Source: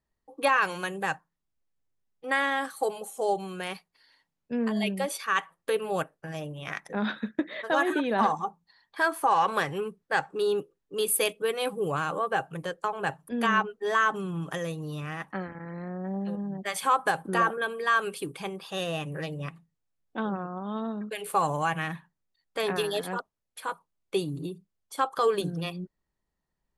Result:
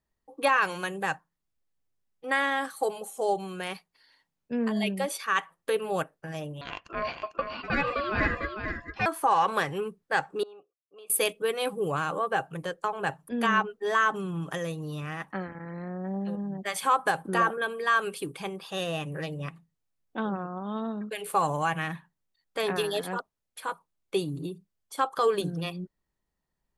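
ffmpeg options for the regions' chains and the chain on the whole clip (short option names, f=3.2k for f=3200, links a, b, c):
-filter_complex "[0:a]asettb=1/sr,asplit=3[a][b][c];[a]atrim=end=6.614[d];[b]atrim=start=6.61:end=9.06,asetpts=PTS-STARTPTS,afade=t=in:d=0.004:c=qsin,afade=t=out:st=2.446:d=0.004:c=qsin,lowpass=f=5.5k:w=0.5412,lowpass=f=5.5k:w=1.3066,aecho=1:1:449:0.447,atrim=end_sample=108045,aeval=exprs='val(0)*sin(2*PI*850*n/s)':c=same[e];[c]atrim=start=9.056[f];[d][e]acrossfade=d=0.004:c1=hsin:c2=qsin[g];[g][f]acrossfade=d=0.004:c1=qsin:c2=hsin,asettb=1/sr,asplit=3[h][i][j];[h]atrim=end=10.434[k];[i]atrim=start=10.43:end=11.1,asetpts=PTS-STARTPTS,afade=t=in:d=0.004:c=qsin,afade=t=out:st=0.666:d=0.004:c=qsin,agate=range=-33dB:threshold=-58dB:ratio=3:release=100:detection=peak,acompressor=threshold=-32dB:ratio=2:attack=3.2:release=140:knee=1:detection=peak,asplit=3[l][m][n];[l]bandpass=f=730:t=q:w=8,volume=0dB[o];[m]bandpass=f=1.09k:t=q:w=8,volume=-6dB[p];[n]bandpass=f=2.44k:t=q:w=8,volume=-9dB[q];[o][p][q]amix=inputs=3:normalize=0[r];[j]atrim=start=11.096[s];[k][r]acrossfade=d=0.004:c1=hsin:c2=qsin[t];[t][s]acrossfade=d=0.004:c1=qsin:c2=hsin"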